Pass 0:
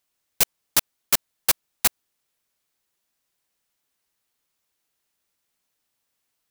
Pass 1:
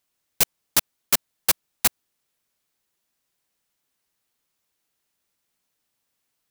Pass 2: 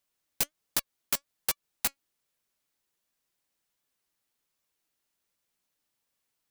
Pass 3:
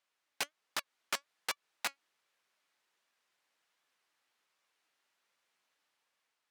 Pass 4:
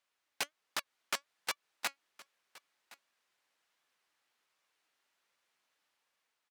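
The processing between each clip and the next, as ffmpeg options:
-af "equalizer=f=180:w=0.67:g=2.5"
-af "acompressor=threshold=0.1:ratio=6,flanger=delay=1.7:depth=1.9:regen=81:speed=1.3:shape=sinusoidal"
-af "dynaudnorm=f=300:g=5:m=1.58,alimiter=limit=0.15:level=0:latency=1:release=98,bandpass=f=1500:t=q:w=0.6:csg=0,volume=1.68"
-af "aecho=1:1:1067:0.0891"

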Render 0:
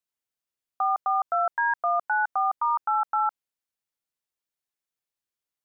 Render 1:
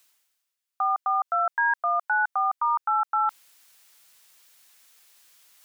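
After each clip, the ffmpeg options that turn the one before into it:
-af "tiltshelf=f=640:g=-8,areverse,acompressor=mode=upward:threshold=0.0251:ratio=2.5,areverse,volume=0.708"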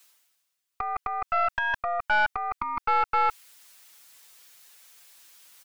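-filter_complex "[0:a]aecho=1:1:7:0.9,acrossover=split=860[s0][s1];[s0]alimiter=level_in=3.35:limit=0.0631:level=0:latency=1:release=293,volume=0.299[s2];[s2][s1]amix=inputs=2:normalize=0,aeval=exprs='(tanh(10*val(0)+0.65)-tanh(0.65))/10':c=same,volume=1.68"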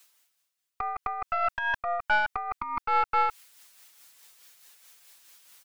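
-af "tremolo=f=4.7:d=0.42"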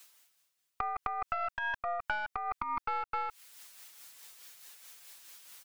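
-af "acompressor=threshold=0.0224:ratio=10,volume=1.33"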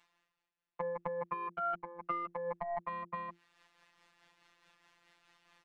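-af "lowpass=2300,afreqshift=-260,afftfilt=real='hypot(re,im)*cos(PI*b)':imag='0':win_size=1024:overlap=0.75,volume=1.12"

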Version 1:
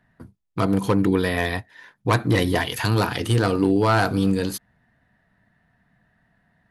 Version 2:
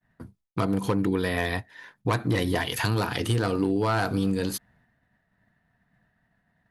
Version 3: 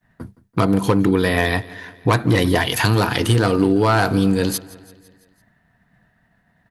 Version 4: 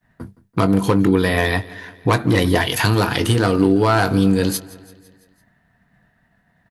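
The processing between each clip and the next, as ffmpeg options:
-af "agate=range=0.0224:threshold=0.00126:ratio=3:detection=peak,acompressor=threshold=0.0708:ratio=2.5"
-af "aecho=1:1:168|336|504|672|840:0.0944|0.0548|0.0318|0.0184|0.0107,volume=2.66"
-filter_complex "[0:a]asplit=2[s0][s1];[s1]adelay=21,volume=0.237[s2];[s0][s2]amix=inputs=2:normalize=0"

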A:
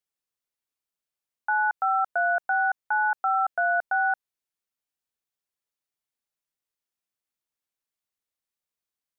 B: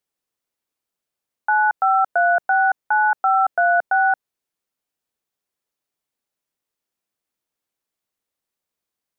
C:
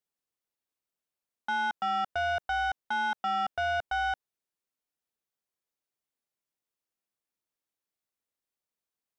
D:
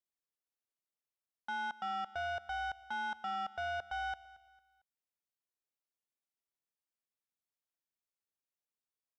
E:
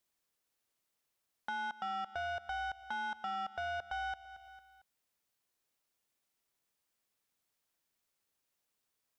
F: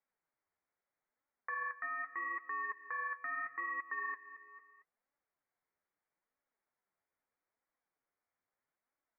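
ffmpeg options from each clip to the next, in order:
-af "equalizer=f=360:t=o:w=3:g=5.5,volume=1.58"
-af "asoftclip=type=tanh:threshold=0.126,volume=0.422"
-af "aecho=1:1:226|452|678:0.112|0.0415|0.0154,volume=0.376"
-af "acompressor=threshold=0.00141:ratio=2,volume=3.35"
-af "aemphasis=mode=production:type=riaa,lowpass=f=2200:t=q:w=0.5098,lowpass=f=2200:t=q:w=0.6013,lowpass=f=2200:t=q:w=0.9,lowpass=f=2200:t=q:w=2.563,afreqshift=-2600,flanger=delay=3.5:depth=8.3:regen=48:speed=0.78:shape=sinusoidal,volume=1.41"

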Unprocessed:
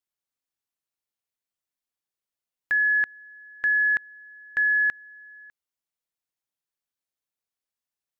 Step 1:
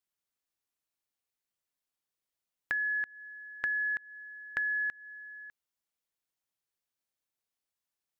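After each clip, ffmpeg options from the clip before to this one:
-af "acompressor=threshold=0.0282:ratio=6"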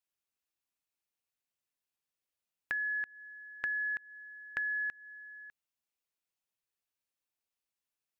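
-af "equalizer=f=2600:t=o:w=0.25:g=4.5,volume=0.708"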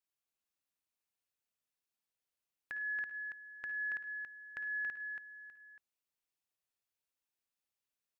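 -filter_complex "[0:a]alimiter=level_in=1.33:limit=0.0631:level=0:latency=1:release=186,volume=0.75,asplit=2[s0][s1];[s1]aecho=0:1:56|71|104|279:0.224|0.178|0.119|0.596[s2];[s0][s2]amix=inputs=2:normalize=0,volume=0.668"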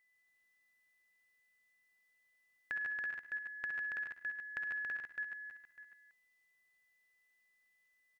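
-af "aecho=1:1:65|139|151|331:0.398|0.422|0.531|0.282,aeval=exprs='val(0)+0.000158*sin(2*PI*2000*n/s)':c=same,volume=1.5"

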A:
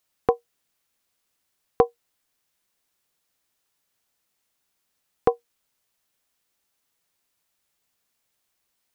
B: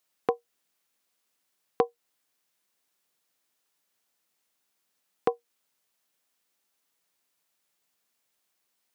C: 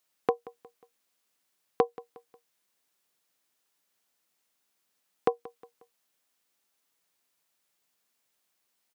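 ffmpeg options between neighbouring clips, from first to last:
-filter_complex "[0:a]highpass=160,asplit=2[s0][s1];[s1]acompressor=threshold=0.0501:ratio=6,volume=1.41[s2];[s0][s2]amix=inputs=2:normalize=0,volume=0.355"
-af "aecho=1:1:180|360|540:0.1|0.042|0.0176"

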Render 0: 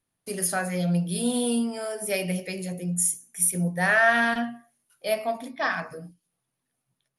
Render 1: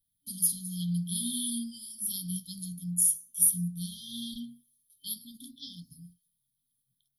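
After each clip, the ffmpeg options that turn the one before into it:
-af "equalizer=f=125:t=o:w=1:g=-3,equalizer=f=250:t=o:w=1:g=-10,equalizer=f=2000:t=o:w=1:g=5,equalizer=f=8000:t=o:w=1:g=-11,aexciter=amount=4:drive=3.7:freq=9700,afftfilt=real='re*(1-between(b*sr/4096,290,3100))':imag='im*(1-between(b*sr/4096,290,3100))':win_size=4096:overlap=0.75"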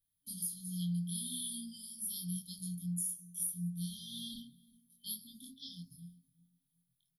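-filter_complex "[0:a]acompressor=threshold=0.0251:ratio=4,asplit=2[s0][s1];[s1]adelay=23,volume=0.794[s2];[s0][s2]amix=inputs=2:normalize=0,asplit=2[s3][s4];[s4]adelay=369,lowpass=f=900:p=1,volume=0.126,asplit=2[s5][s6];[s6]adelay=369,lowpass=f=900:p=1,volume=0.3,asplit=2[s7][s8];[s8]adelay=369,lowpass=f=900:p=1,volume=0.3[s9];[s3][s5][s7][s9]amix=inputs=4:normalize=0,volume=0.501"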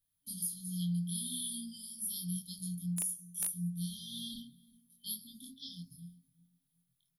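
-af "aeval=exprs='(mod(17.8*val(0)+1,2)-1)/17.8':c=same,volume=1.19"

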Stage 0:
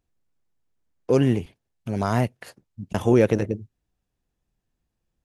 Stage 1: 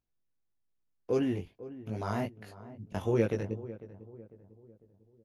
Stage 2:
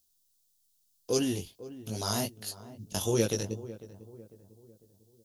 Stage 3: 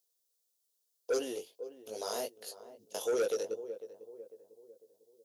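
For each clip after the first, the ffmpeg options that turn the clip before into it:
-filter_complex "[0:a]equalizer=f=8200:t=o:w=0.29:g=-10.5,flanger=delay=17.5:depth=3.3:speed=2.5,asplit=2[s0][s1];[s1]adelay=499,lowpass=f=1000:p=1,volume=0.178,asplit=2[s2][s3];[s3]adelay=499,lowpass=f=1000:p=1,volume=0.46,asplit=2[s4][s5];[s5]adelay=499,lowpass=f=1000:p=1,volume=0.46,asplit=2[s6][s7];[s7]adelay=499,lowpass=f=1000:p=1,volume=0.46[s8];[s0][s2][s4][s6][s8]amix=inputs=5:normalize=0,volume=0.447"
-af "aexciter=amount=9.6:drive=6.1:freq=3300"
-af "highpass=f=480:t=q:w=4.9,asoftclip=type=tanh:threshold=0.119,volume=0.447"

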